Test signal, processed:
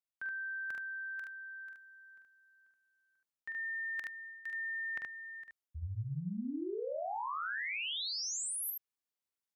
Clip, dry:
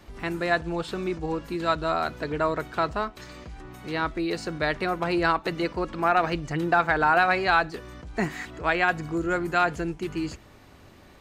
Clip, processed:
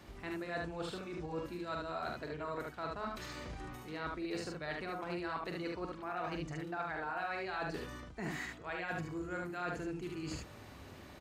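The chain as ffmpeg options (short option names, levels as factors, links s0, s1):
-af "areverse,acompressor=threshold=0.0141:ratio=6,areverse,highpass=44,aecho=1:1:45|74:0.501|0.708,volume=0.708"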